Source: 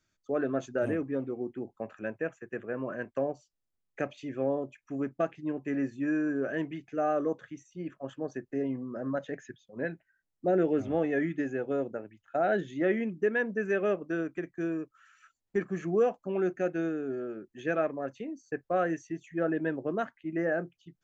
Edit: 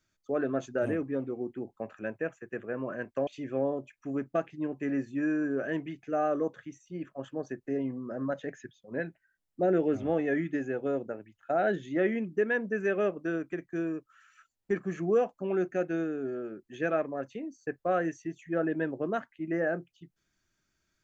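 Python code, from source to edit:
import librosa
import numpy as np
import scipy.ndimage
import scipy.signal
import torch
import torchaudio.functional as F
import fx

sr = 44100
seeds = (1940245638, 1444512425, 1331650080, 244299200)

y = fx.edit(x, sr, fx.cut(start_s=3.27, length_s=0.85), tone=tone)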